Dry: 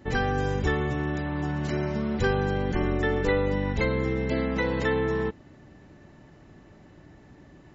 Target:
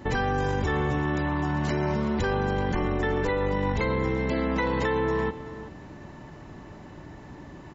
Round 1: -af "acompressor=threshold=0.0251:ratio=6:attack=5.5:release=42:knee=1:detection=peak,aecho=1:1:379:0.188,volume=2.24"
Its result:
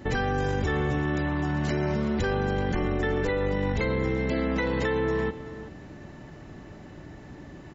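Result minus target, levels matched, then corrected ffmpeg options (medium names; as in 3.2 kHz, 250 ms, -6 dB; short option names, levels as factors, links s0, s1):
1 kHz band -3.0 dB
-af "acompressor=threshold=0.0251:ratio=6:attack=5.5:release=42:knee=1:detection=peak,equalizer=f=980:w=3.7:g=7.5,aecho=1:1:379:0.188,volume=2.24"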